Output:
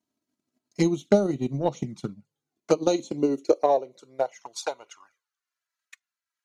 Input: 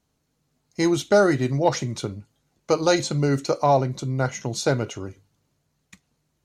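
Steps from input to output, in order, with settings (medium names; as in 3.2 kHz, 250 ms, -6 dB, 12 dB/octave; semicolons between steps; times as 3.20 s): touch-sensitive flanger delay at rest 3.1 ms, full sweep at -19.5 dBFS; high-pass sweep 180 Hz -> 1.5 kHz, 2.53–5.43 s; transient shaper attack +9 dB, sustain -5 dB; trim -8.5 dB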